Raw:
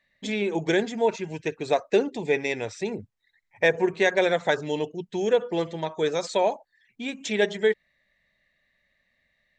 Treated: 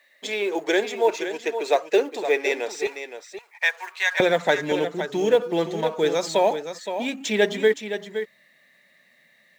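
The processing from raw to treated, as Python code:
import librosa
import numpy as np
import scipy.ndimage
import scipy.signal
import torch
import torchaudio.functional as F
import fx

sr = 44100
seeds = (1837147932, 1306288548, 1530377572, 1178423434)

y = fx.law_mismatch(x, sr, coded='mu')
y = fx.highpass(y, sr, hz=fx.steps((0.0, 350.0), (2.87, 990.0), (4.2, 160.0)), slope=24)
y = y + 10.0 ** (-9.5 / 20.0) * np.pad(y, (int(517 * sr / 1000.0), 0))[:len(y)]
y = F.gain(torch.from_numpy(y), 2.5).numpy()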